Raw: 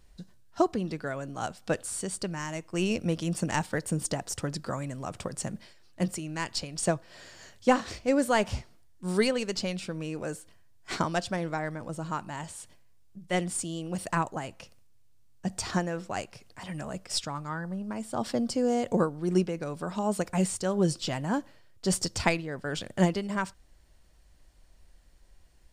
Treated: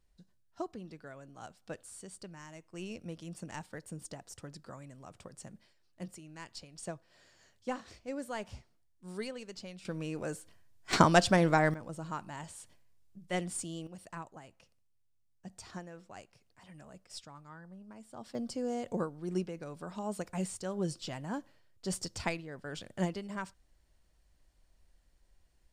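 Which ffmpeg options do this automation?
-af "asetnsamples=n=441:p=0,asendcmd='9.85 volume volume -3dB;10.93 volume volume 6dB;11.74 volume volume -6dB;13.87 volume volume -16dB;18.35 volume volume -9dB',volume=0.188"

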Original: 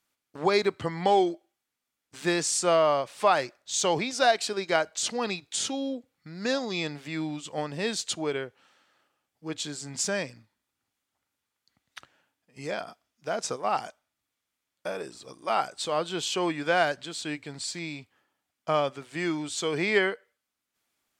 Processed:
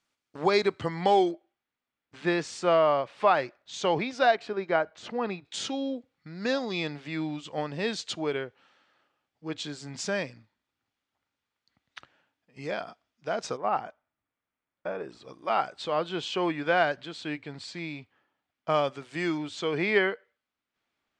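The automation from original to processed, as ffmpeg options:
-af "asetnsamples=n=441:p=0,asendcmd='1.31 lowpass f 3000;4.35 lowpass f 1800;5.45 lowpass f 4500;13.57 lowpass f 1900;15.09 lowpass f 3400;18.7 lowpass f 6900;19.38 lowpass f 3500',lowpass=6900"

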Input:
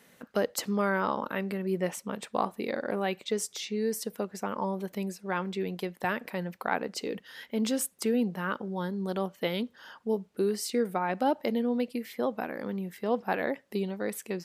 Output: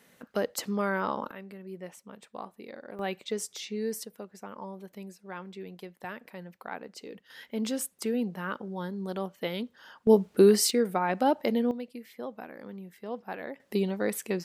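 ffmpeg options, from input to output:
-af "asetnsamples=n=441:p=0,asendcmd='1.31 volume volume -12dB;2.99 volume volume -2.5dB;4.05 volume volume -9.5dB;7.3 volume volume -2.5dB;10.07 volume volume 9.5dB;10.71 volume volume 2dB;11.71 volume volume -8.5dB;13.6 volume volume 3.5dB',volume=0.841"

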